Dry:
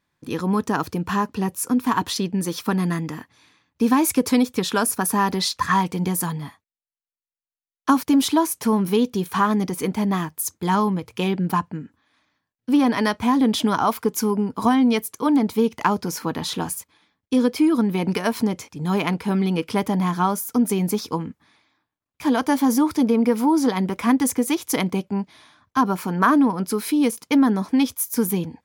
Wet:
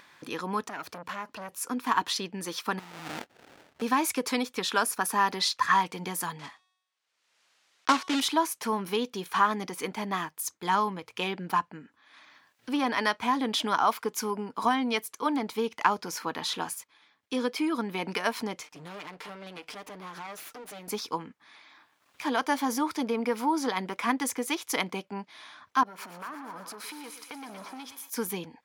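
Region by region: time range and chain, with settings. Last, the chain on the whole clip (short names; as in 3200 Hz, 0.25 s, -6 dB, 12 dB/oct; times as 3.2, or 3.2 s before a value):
0.64–1.61 high shelf 11000 Hz +4 dB + compressor 2:1, threshold -27 dBFS + core saturation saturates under 1000 Hz
2.79–3.82 negative-ratio compressor -32 dBFS + sample-rate reducer 1100 Hz, jitter 20%
6.39–8.21 block floating point 3-bit + LPF 6900 Hz + de-hum 370.4 Hz, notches 39
18.63–20.88 minimum comb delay 6.6 ms + compressor 10:1, threshold -31 dBFS + hard clip -29.5 dBFS
25.83–28.1 compressor 10:1, threshold -30 dBFS + thinning echo 0.118 s, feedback 74%, high-pass 530 Hz, level -7.5 dB + core saturation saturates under 920 Hz
whole clip: HPF 1300 Hz 6 dB/oct; upward compressor, threshold -37 dBFS; LPF 3300 Hz 6 dB/oct; gain +1.5 dB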